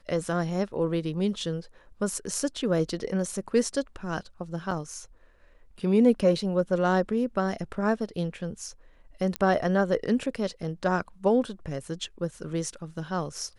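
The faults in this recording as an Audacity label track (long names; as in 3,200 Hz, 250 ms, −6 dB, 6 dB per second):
4.710000	4.710000	drop-out 3.4 ms
9.360000	9.360000	click −13 dBFS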